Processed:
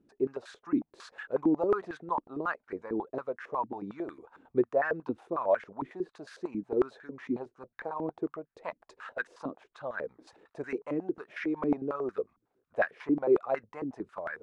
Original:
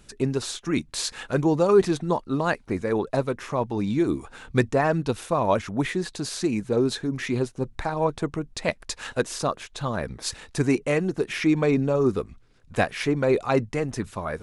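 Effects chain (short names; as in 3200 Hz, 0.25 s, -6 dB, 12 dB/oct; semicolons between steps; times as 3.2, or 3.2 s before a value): stepped band-pass 11 Hz 290–1600 Hz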